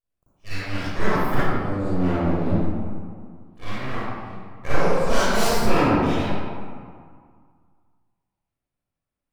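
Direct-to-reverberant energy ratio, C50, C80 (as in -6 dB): -13.5 dB, -8.0 dB, -3.0 dB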